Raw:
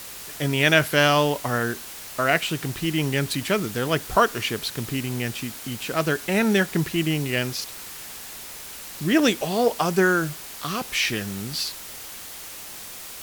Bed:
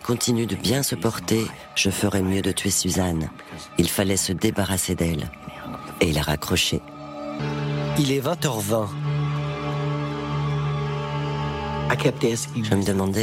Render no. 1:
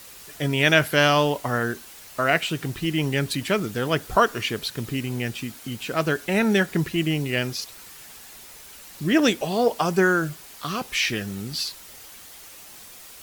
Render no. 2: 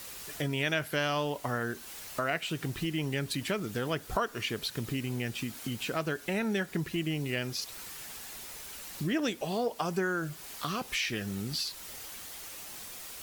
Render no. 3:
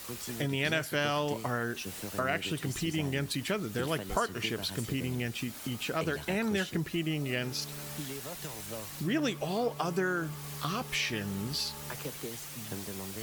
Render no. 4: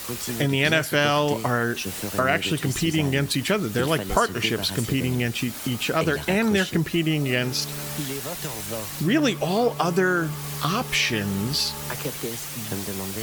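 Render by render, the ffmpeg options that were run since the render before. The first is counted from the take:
ffmpeg -i in.wav -af "afftdn=noise_reduction=7:noise_floor=-39" out.wav
ffmpeg -i in.wav -af "acompressor=threshold=-33dB:ratio=2.5" out.wav
ffmpeg -i in.wav -i bed.wav -filter_complex "[1:a]volume=-20dB[link_01];[0:a][link_01]amix=inputs=2:normalize=0" out.wav
ffmpeg -i in.wav -af "volume=9.5dB" out.wav

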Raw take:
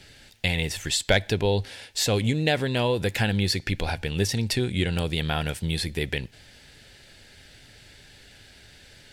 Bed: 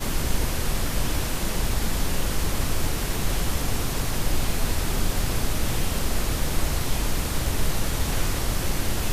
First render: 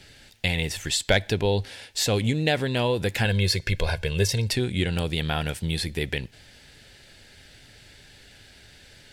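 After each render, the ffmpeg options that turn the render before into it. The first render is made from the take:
ffmpeg -i in.wav -filter_complex "[0:a]asettb=1/sr,asplit=3[link_01][link_02][link_03];[link_01]atrim=end=3.254[link_04];[link_02]atrim=start=3.25:end=4.49,asetpts=PTS-STARTPTS,afade=type=in:duration=0.004:curve=qsin,afade=type=out:start_time=1.236:duration=0.004:curve=qsin,aecho=1:1:1.9:0.71,atrim=end_sample=54684[link_05];[link_03]atrim=start=4.486[link_06];[link_04][link_05]acrossfade=duration=0.004:curve1=hsin:curve2=qsin[link_07];[link_07][link_06]acrossfade=duration=0.004:curve1=qsin:curve2=hsin" out.wav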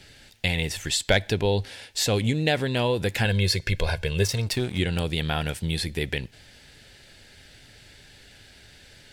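ffmpeg -i in.wav -filter_complex "[0:a]asplit=3[link_01][link_02][link_03];[link_01]afade=type=out:start_time=4.22:duration=0.02[link_04];[link_02]aeval=exprs='sgn(val(0))*max(abs(val(0))-0.0119,0)':channel_layout=same,afade=type=in:start_time=4.22:duration=0.02,afade=type=out:start_time=4.78:duration=0.02[link_05];[link_03]afade=type=in:start_time=4.78:duration=0.02[link_06];[link_04][link_05][link_06]amix=inputs=3:normalize=0" out.wav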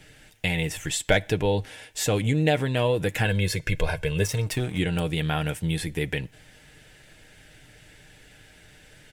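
ffmpeg -i in.wav -af "equalizer=frequency=4400:width=2.2:gain=-10.5,aecho=1:1:6.5:0.43" out.wav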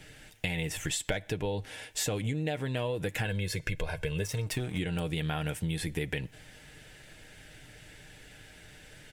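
ffmpeg -i in.wav -af "acompressor=threshold=-29dB:ratio=6" out.wav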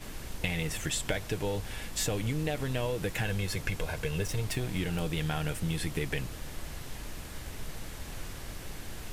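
ffmpeg -i in.wav -i bed.wav -filter_complex "[1:a]volume=-16.5dB[link_01];[0:a][link_01]amix=inputs=2:normalize=0" out.wav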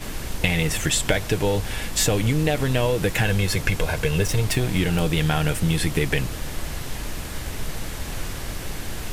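ffmpeg -i in.wav -af "volume=10.5dB" out.wav

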